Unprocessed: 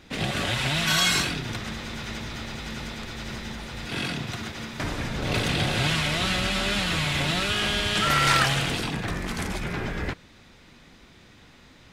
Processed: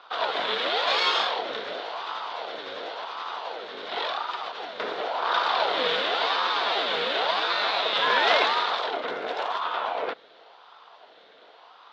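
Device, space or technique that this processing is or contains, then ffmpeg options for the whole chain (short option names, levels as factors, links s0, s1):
voice changer toy: -filter_complex "[0:a]aeval=exprs='val(0)*sin(2*PI*710*n/s+710*0.55/0.93*sin(2*PI*0.93*n/s))':c=same,highpass=420,equalizer=f=460:t=q:w=4:g=6,equalizer=f=690:t=q:w=4:g=6,equalizer=f=1000:t=q:w=4:g=4,equalizer=f=1400:t=q:w=4:g=6,equalizer=f=2500:t=q:w=4:g=-3,equalizer=f=3600:t=q:w=4:g=8,lowpass=f=4300:w=0.5412,lowpass=f=4300:w=1.3066,asettb=1/sr,asplit=3[s0][s1][s2];[s0]atrim=end=1.174[s3];[s1]atrim=start=1.17:end=1.86,asetpts=PTS-STARTPTS,afade=t=in:d=0.004:c=qsin,afade=t=out:st=0.686:d=0.004:c=qsin,asplit=2[s4][s5];[s5]adelay=29,volume=0.501[s6];[s4][s6]amix=inputs=2:normalize=0,atrim=end_sample=30429[s7];[s2]atrim=start=1.856[s8];[s3][s7]acrossfade=d=0.004:c1=hsin:c2=qsin[s9];[s9][s8]acrossfade=d=0.004:c1=qsin:c2=hsin"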